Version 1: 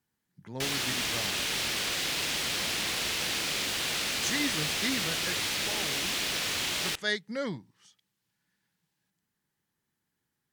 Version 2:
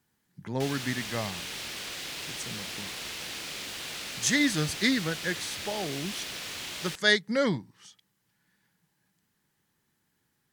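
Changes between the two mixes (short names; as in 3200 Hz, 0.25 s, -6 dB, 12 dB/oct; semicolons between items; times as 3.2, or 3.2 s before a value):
speech +7.5 dB; background -7.0 dB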